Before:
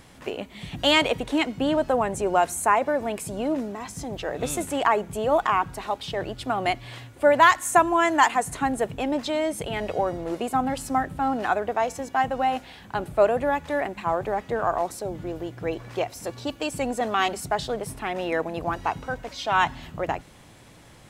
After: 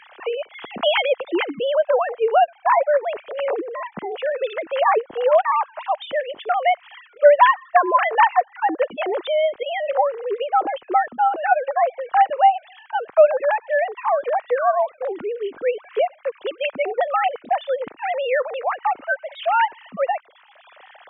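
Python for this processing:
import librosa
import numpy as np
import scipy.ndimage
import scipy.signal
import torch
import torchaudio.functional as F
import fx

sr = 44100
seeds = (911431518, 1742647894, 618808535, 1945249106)

y = fx.sine_speech(x, sr)
y = fx.band_squash(y, sr, depth_pct=40)
y = y * librosa.db_to_amplitude(5.5)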